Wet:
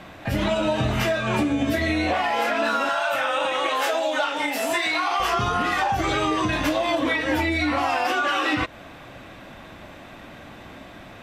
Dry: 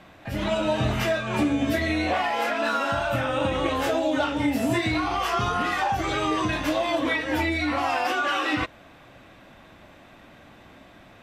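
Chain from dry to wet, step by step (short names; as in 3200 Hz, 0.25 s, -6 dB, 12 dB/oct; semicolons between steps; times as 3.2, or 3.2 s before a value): 2.89–5.2 HPF 670 Hz 12 dB/oct; compressor, threshold -27 dBFS, peak gain reduction 8 dB; gain +7.5 dB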